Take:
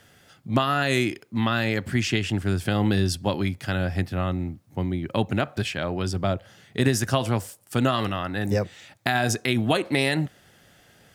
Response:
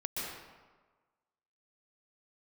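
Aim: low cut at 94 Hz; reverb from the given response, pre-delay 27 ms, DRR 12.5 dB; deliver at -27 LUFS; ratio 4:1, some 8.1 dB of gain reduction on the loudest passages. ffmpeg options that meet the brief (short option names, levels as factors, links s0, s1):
-filter_complex "[0:a]highpass=94,acompressor=threshold=0.0447:ratio=4,asplit=2[s0][s1];[1:a]atrim=start_sample=2205,adelay=27[s2];[s1][s2]afir=irnorm=-1:irlink=0,volume=0.158[s3];[s0][s3]amix=inputs=2:normalize=0,volume=1.68"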